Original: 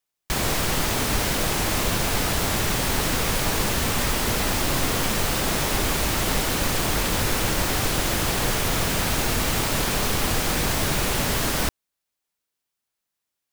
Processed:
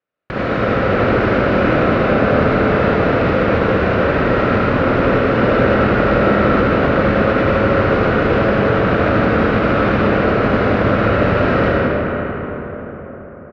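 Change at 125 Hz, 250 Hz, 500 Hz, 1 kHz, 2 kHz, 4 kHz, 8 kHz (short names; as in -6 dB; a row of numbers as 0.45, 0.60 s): +9.5 dB, +13.0 dB, +15.5 dB, +10.0 dB, +8.5 dB, -5.5 dB, under -25 dB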